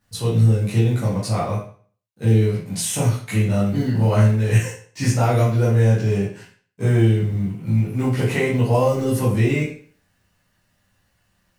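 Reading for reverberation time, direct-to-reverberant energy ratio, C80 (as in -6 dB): 0.45 s, -9.5 dB, 9.0 dB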